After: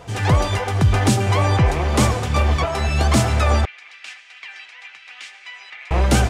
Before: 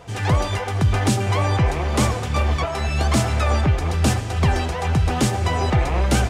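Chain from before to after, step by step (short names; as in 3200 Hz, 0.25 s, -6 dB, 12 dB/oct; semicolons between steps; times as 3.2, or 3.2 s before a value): 3.65–5.91 ladder band-pass 2600 Hz, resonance 50%; gain +2.5 dB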